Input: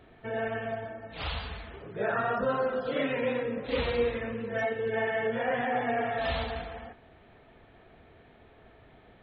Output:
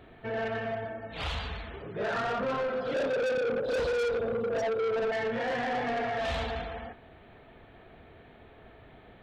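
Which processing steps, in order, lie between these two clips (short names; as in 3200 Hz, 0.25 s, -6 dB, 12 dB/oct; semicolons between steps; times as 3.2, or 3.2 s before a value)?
2.94–5.12 EQ curve 290 Hz 0 dB, 520 Hz +12 dB, 1900 Hz -28 dB, 5100 Hz +14 dB; soft clip -30 dBFS, distortion -4 dB; gain +3 dB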